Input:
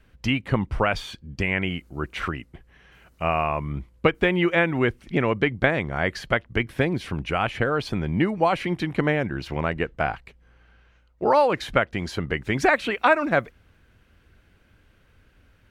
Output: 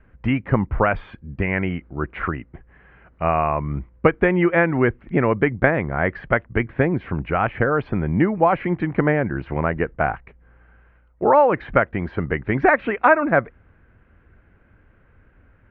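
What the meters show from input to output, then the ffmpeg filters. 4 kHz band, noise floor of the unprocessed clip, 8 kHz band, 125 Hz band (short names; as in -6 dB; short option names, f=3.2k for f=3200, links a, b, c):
under -10 dB, -59 dBFS, under -30 dB, +4.0 dB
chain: -af "lowpass=f=2k:w=0.5412,lowpass=f=2k:w=1.3066,volume=4dB"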